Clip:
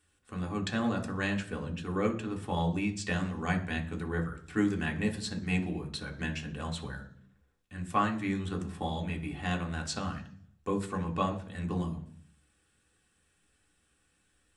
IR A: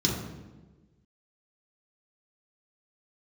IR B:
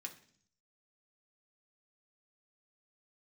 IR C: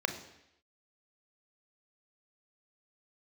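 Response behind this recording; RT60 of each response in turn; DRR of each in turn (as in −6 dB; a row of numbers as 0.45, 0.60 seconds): B; 1.3, 0.55, 0.80 seconds; −3.5, 1.5, 7.0 decibels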